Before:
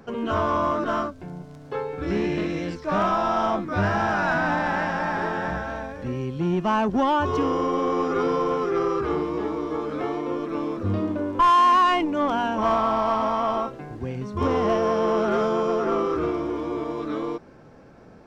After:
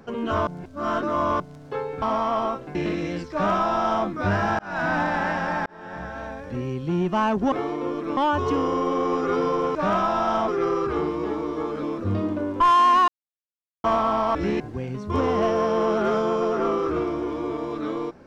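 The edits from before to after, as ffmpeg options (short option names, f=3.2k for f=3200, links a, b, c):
-filter_complex "[0:a]asplit=16[a][b][c][d][e][f][g][h][i][j][k][l][m][n][o][p];[a]atrim=end=0.472[q];[b]atrim=start=0.468:end=1.402,asetpts=PTS-STARTPTS,areverse[r];[c]atrim=start=1.398:end=2.022[s];[d]atrim=start=13.138:end=13.872[t];[e]atrim=start=2.268:end=4.11,asetpts=PTS-STARTPTS,afade=t=out:st=1.838:d=0.004:c=hsin[u];[f]atrim=start=4.11:end=5.18,asetpts=PTS-STARTPTS,afade=t=in:d=0.3,afade=t=out:st=1.066:d=0.004:c=hsin[v];[g]atrim=start=5.18:end=7.042,asetpts=PTS-STARTPTS,afade=t=in:d=1.07:c=qsin[w];[h]atrim=start=9.968:end=10.622[x];[i]atrim=start=7.038:end=8.622[y];[j]atrim=start=2.838:end=3.572[z];[k]atrim=start=8.618:end=9.972[aa];[l]atrim=start=10.618:end=11.87,asetpts=PTS-STARTPTS,afade=t=out:st=1.248:d=0.004:c=hsin[ab];[m]atrim=start=11.87:end=12.63,asetpts=PTS-STARTPTS,volume=0[ac];[n]atrim=start=12.63:end=13.142,asetpts=PTS-STARTPTS,afade=t=in:d=0.004:c=hsin[ad];[o]atrim=start=2.018:end=2.272[ae];[p]atrim=start=13.868[af];[q][r]acrossfade=d=0.004:c1=hsin:c2=hsin[ag];[ag][s]acrossfade=d=0.004:c1=hsin:c2=hsin[ah];[ah][t]acrossfade=d=0.004:c1=hsin:c2=hsin[ai];[u][v][w]concat=n=3:v=0:a=1[aj];[ai][aj]acrossfade=d=0.004:c1=hsin:c2=hsin[ak];[ak][x]acrossfade=d=0.004:c1=hsin:c2=hsin[al];[al][y]acrossfade=d=0.004:c1=hsin:c2=hsin[am];[am][z]acrossfade=d=0.004:c1=hsin:c2=hsin[an];[an][aa]acrossfade=d=0.004:c1=hsin:c2=hsin[ao];[ab][ac][ad]concat=n=3:v=0:a=1[ap];[ao][ap]acrossfade=d=0.004:c1=hsin:c2=hsin[aq];[aq][ae]acrossfade=d=0.004:c1=hsin:c2=hsin[ar];[ar][af]acrossfade=d=0.004:c1=hsin:c2=hsin"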